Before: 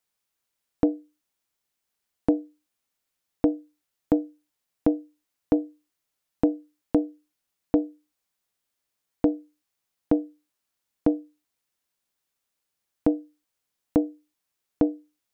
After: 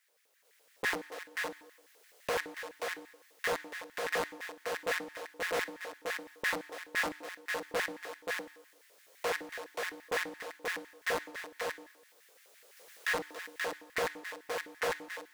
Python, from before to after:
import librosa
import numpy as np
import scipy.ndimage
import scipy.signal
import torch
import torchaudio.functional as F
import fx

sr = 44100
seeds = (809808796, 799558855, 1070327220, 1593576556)

p1 = fx.recorder_agc(x, sr, target_db=-16.0, rise_db_per_s=9.4, max_gain_db=30)
p2 = scipy.signal.sosfilt(scipy.signal.butter(2, 120.0, 'highpass', fs=sr, output='sos'), p1)
p3 = fx.peak_eq(p2, sr, hz=410.0, db=6.0, octaves=1.4)
p4 = fx.level_steps(p3, sr, step_db=11)
p5 = p3 + (p4 * librosa.db_to_amplitude(-3.0))
p6 = fx.auto_swell(p5, sr, attack_ms=280.0)
p7 = (np.mod(10.0 ** (31.5 / 20.0) * p6 + 1.0, 2.0) - 1.0) / 10.0 ** (31.5 / 20.0)
p8 = p7 + fx.echo_multitap(p7, sr, ms=(281, 531), db=(-13.0, -5.0), dry=0)
p9 = 10.0 ** (-32.0 / 20.0) * np.tanh(p8 / 10.0 ** (-32.0 / 20.0))
p10 = fx.rev_plate(p9, sr, seeds[0], rt60_s=0.95, hf_ratio=0.9, predelay_ms=0, drr_db=13.0)
p11 = fx.filter_lfo_highpass(p10, sr, shape='square', hz=5.9, low_hz=490.0, high_hz=1800.0, q=4.2)
p12 = fx.doppler_dist(p11, sr, depth_ms=0.53)
y = p12 * librosa.db_to_amplitude(3.0)